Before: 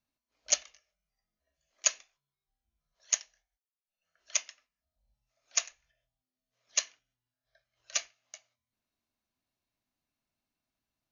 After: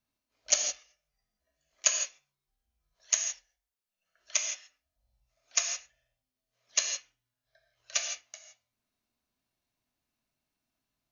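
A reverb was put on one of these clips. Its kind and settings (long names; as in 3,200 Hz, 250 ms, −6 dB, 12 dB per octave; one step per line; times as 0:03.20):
reverb whose tail is shaped and stops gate 190 ms flat, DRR 3 dB
level +1 dB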